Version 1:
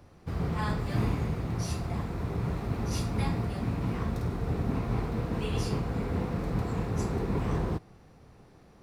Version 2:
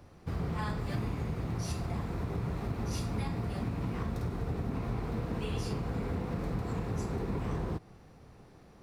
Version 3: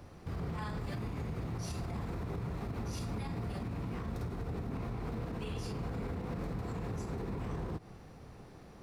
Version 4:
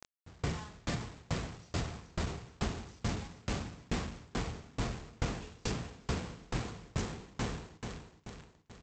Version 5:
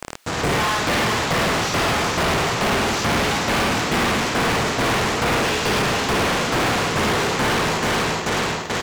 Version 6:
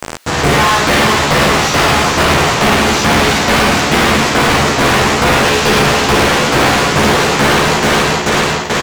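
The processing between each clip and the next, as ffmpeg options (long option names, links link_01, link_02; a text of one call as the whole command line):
ffmpeg -i in.wav -af "acompressor=threshold=-30dB:ratio=6" out.wav
ffmpeg -i in.wav -af "alimiter=level_in=9.5dB:limit=-24dB:level=0:latency=1:release=92,volume=-9.5dB,volume=3dB" out.wav
ffmpeg -i in.wav -af "aresample=16000,acrusher=bits=6:mix=0:aa=0.000001,aresample=44100,aecho=1:1:422|844|1266|1688|2110|2532:0.447|0.219|0.107|0.0526|0.0258|0.0126,aeval=exprs='val(0)*pow(10,-32*if(lt(mod(2.3*n/s,1),2*abs(2.3)/1000),1-mod(2.3*n/s,1)/(2*abs(2.3)/1000),(mod(2.3*n/s,1)-2*abs(2.3)/1000)/(1-2*abs(2.3)/1000))/20)':channel_layout=same,volume=7dB" out.wav
ffmpeg -i in.wav -filter_complex "[0:a]aecho=1:1:55.39|105:0.631|0.794,acrossover=split=3700[link_01][link_02];[link_02]acompressor=threshold=-56dB:ratio=4:attack=1:release=60[link_03];[link_01][link_03]amix=inputs=2:normalize=0,asplit=2[link_04][link_05];[link_05]highpass=frequency=720:poles=1,volume=42dB,asoftclip=type=tanh:threshold=-19dB[link_06];[link_04][link_06]amix=inputs=2:normalize=0,lowpass=frequency=5200:poles=1,volume=-6dB,volume=6dB" out.wav
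ffmpeg -i in.wav -filter_complex "[0:a]asplit=2[link_01][link_02];[link_02]adelay=14,volume=-5dB[link_03];[link_01][link_03]amix=inputs=2:normalize=0,volume=8dB" out.wav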